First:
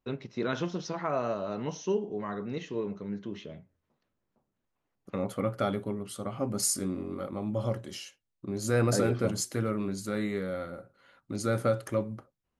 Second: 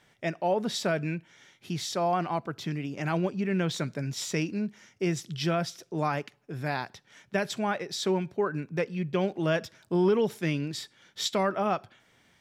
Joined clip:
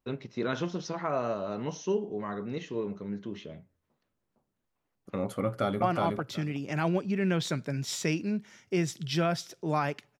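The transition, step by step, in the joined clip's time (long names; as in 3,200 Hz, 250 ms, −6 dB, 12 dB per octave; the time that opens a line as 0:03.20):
first
0:05.43–0:05.82: delay throw 370 ms, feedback 15%, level −2 dB
0:05.82: continue with second from 0:02.11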